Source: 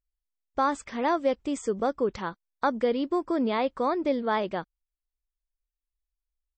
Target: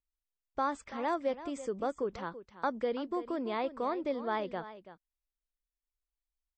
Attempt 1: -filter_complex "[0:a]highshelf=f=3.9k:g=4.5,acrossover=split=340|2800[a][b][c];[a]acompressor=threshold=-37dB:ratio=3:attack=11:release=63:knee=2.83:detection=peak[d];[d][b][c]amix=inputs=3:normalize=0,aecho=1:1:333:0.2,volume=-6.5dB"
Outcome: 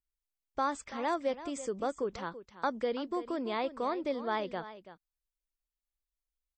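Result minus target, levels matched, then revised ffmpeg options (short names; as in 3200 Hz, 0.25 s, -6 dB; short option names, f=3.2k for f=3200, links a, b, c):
8000 Hz band +6.5 dB
-filter_complex "[0:a]highshelf=f=3.9k:g=-4,acrossover=split=340|2800[a][b][c];[a]acompressor=threshold=-37dB:ratio=3:attack=11:release=63:knee=2.83:detection=peak[d];[d][b][c]amix=inputs=3:normalize=0,aecho=1:1:333:0.2,volume=-6.5dB"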